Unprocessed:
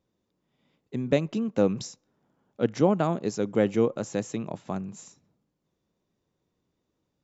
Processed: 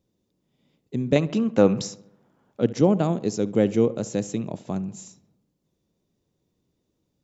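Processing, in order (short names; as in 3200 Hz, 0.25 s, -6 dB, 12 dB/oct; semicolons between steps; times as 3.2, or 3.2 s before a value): bell 1300 Hz -9.5 dB 2.1 oct, from 1.16 s +2 dB, from 2.61 s -8.5 dB; darkening echo 69 ms, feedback 56%, low-pass 2900 Hz, level -17.5 dB; gain +5 dB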